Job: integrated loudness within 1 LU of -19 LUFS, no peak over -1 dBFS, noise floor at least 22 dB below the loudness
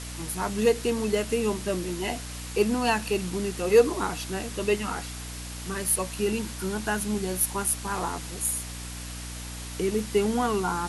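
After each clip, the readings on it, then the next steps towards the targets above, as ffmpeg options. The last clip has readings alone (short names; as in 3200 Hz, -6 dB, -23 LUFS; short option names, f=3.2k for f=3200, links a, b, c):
hum 60 Hz; harmonics up to 300 Hz; hum level -37 dBFS; noise floor -37 dBFS; noise floor target -50 dBFS; loudness -27.5 LUFS; peak -7.5 dBFS; loudness target -19.0 LUFS
-> -af "bandreject=f=60:t=h:w=6,bandreject=f=120:t=h:w=6,bandreject=f=180:t=h:w=6,bandreject=f=240:t=h:w=6,bandreject=f=300:t=h:w=6"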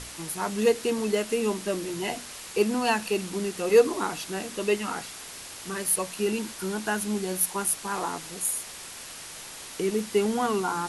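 hum none; noise floor -42 dBFS; noise floor target -49 dBFS
-> -af "afftdn=nr=7:nf=-42"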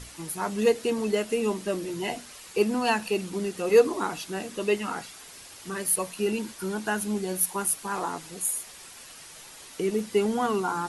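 noise floor -47 dBFS; noise floor target -50 dBFS
-> -af "afftdn=nr=6:nf=-47"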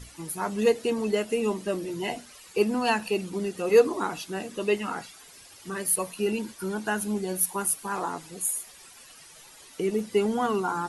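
noise floor -50 dBFS; loudness -27.5 LUFS; peak -7.5 dBFS; loudness target -19.0 LUFS
-> -af "volume=8.5dB,alimiter=limit=-1dB:level=0:latency=1"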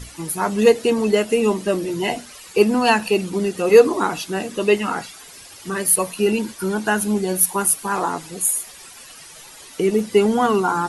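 loudness -19.0 LUFS; peak -1.0 dBFS; noise floor -42 dBFS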